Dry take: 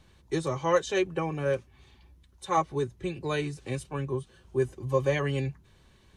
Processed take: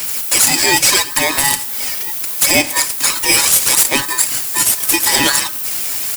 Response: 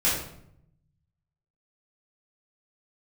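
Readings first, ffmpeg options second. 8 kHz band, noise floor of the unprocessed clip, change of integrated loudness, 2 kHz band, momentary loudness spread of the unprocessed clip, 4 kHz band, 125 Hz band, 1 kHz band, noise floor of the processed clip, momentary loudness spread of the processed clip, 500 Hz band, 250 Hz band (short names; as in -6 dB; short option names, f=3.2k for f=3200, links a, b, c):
+35.5 dB, -60 dBFS, +18.0 dB, +20.5 dB, 8 LU, +27.5 dB, -1.5 dB, +11.0 dB, -24 dBFS, 8 LU, +2.5 dB, +8.5 dB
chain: -filter_complex "[0:a]aexciter=amount=2:drive=6.6:freq=3.2k,highshelf=f=9.3k:g=11,asplit=2[a][b];[b]adelay=1341,volume=-30dB,highshelf=f=4k:g=-30.2[c];[a][c]amix=inputs=2:normalize=0,acompressor=threshold=-31dB:ratio=4,aemphasis=mode=production:type=riaa,aeval=exprs='0.112*(abs(mod(val(0)/0.112+3,4)-2)-1)':c=same,asplit=2[d][e];[1:a]atrim=start_sample=2205,adelay=11[f];[e][f]afir=irnorm=-1:irlink=0,volume=-28dB[g];[d][g]amix=inputs=2:normalize=0,aphaser=in_gain=1:out_gain=1:delay=1.9:decay=0.56:speed=0.76:type=sinusoidal,highpass=f=950:p=1,acontrast=82,alimiter=level_in=16dB:limit=-1dB:release=50:level=0:latency=1,aeval=exprs='val(0)*sgn(sin(2*PI*1400*n/s))':c=same,volume=-1dB"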